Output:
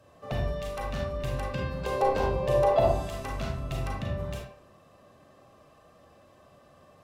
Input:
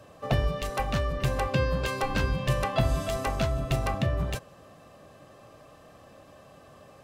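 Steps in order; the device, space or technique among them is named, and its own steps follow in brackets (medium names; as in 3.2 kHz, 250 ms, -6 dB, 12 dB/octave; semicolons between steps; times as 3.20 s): 1.86–2.89 s: high-order bell 580 Hz +13 dB; bathroom (reverberation RT60 0.60 s, pre-delay 33 ms, DRR -1 dB); trim -8.5 dB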